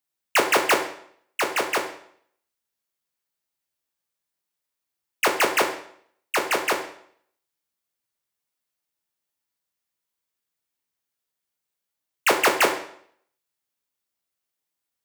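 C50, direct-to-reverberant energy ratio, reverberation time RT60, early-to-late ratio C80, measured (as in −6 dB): 8.5 dB, 2.0 dB, 0.65 s, 11.0 dB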